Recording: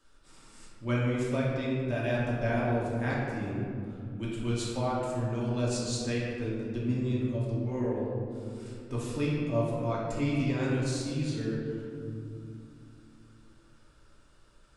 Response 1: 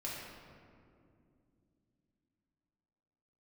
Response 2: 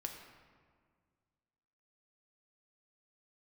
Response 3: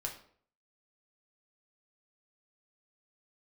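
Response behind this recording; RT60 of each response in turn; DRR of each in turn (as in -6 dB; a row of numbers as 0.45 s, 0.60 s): 1; 2.5 s, 1.8 s, 0.55 s; -6.5 dB, 2.0 dB, 0.0 dB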